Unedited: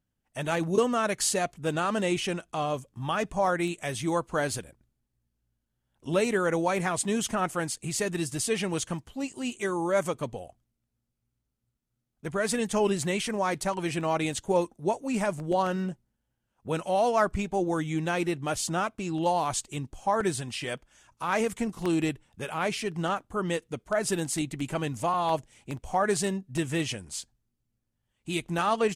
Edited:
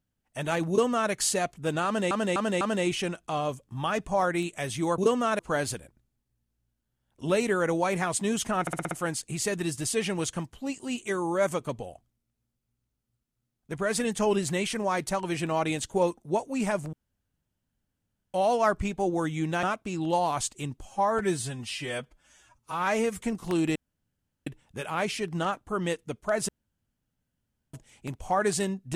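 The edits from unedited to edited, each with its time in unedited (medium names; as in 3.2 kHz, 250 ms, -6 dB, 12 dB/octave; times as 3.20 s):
0.70–1.11 s: copy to 4.23 s
1.86–2.11 s: loop, 4 plays
7.45 s: stutter 0.06 s, 6 plays
15.47–16.88 s: room tone
18.17–18.76 s: delete
19.98–21.55 s: stretch 1.5×
22.10 s: insert room tone 0.71 s
24.12–25.37 s: room tone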